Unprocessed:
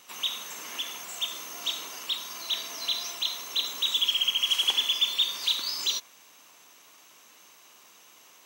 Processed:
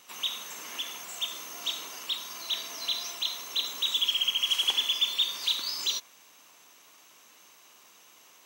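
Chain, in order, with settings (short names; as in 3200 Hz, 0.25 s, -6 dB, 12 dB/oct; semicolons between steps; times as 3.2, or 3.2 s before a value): gain -1.5 dB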